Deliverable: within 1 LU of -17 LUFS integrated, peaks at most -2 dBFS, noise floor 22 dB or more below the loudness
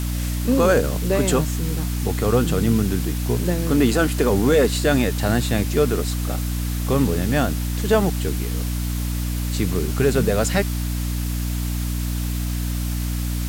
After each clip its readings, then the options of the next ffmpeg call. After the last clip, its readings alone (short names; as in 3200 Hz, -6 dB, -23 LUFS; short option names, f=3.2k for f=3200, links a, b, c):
hum 60 Hz; harmonics up to 300 Hz; hum level -22 dBFS; noise floor -24 dBFS; noise floor target -44 dBFS; loudness -21.5 LUFS; peak -6.0 dBFS; loudness target -17.0 LUFS
-> -af "bandreject=f=60:t=h:w=4,bandreject=f=120:t=h:w=4,bandreject=f=180:t=h:w=4,bandreject=f=240:t=h:w=4,bandreject=f=300:t=h:w=4"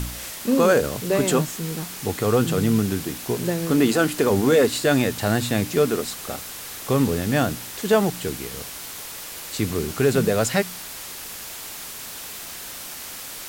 hum none; noise floor -36 dBFS; noise floor target -45 dBFS
-> -af "afftdn=nr=9:nf=-36"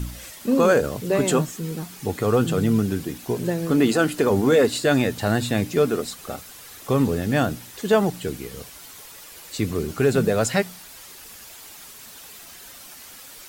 noise floor -43 dBFS; noise floor target -44 dBFS
-> -af "afftdn=nr=6:nf=-43"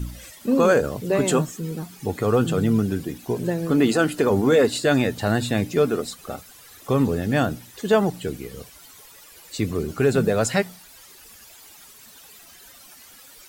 noise floor -48 dBFS; loudness -22.0 LUFS; peak -7.5 dBFS; loudness target -17.0 LUFS
-> -af "volume=5dB"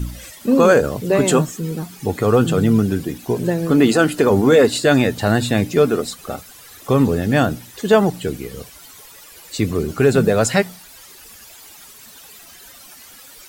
loudness -17.0 LUFS; peak -2.5 dBFS; noise floor -43 dBFS